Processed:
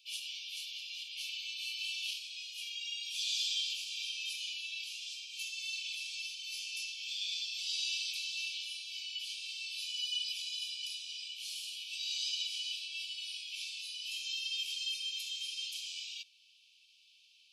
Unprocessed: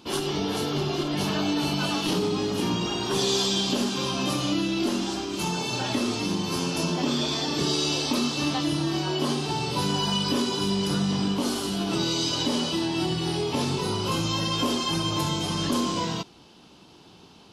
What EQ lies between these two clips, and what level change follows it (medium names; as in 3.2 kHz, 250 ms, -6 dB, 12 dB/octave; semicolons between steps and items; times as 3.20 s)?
Chebyshev high-pass 2.3 kHz, order 10; treble shelf 2.9 kHz -11 dB; 0.0 dB